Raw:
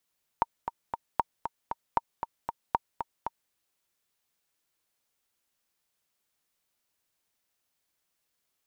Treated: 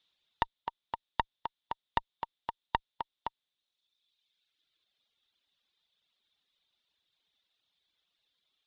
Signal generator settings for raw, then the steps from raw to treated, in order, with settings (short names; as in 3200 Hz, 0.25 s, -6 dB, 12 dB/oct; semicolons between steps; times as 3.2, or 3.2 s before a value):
metronome 232 bpm, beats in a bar 3, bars 4, 927 Hz, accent 8 dB -10 dBFS
one diode to ground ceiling -22.5 dBFS; reverb removal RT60 1.7 s; synth low-pass 3600 Hz, resonance Q 7.8